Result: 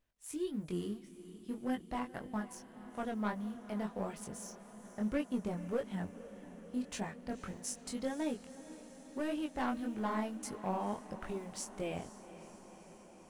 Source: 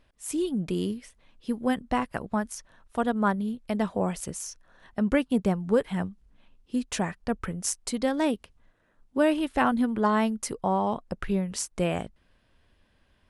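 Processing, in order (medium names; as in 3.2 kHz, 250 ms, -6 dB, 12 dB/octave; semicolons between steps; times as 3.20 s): companding laws mixed up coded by A; saturation -19.5 dBFS, distortion -14 dB; chorus 1.7 Hz, delay 19.5 ms, depth 4.9 ms; echo that smears into a reverb 492 ms, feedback 72%, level -15 dB; trim -6 dB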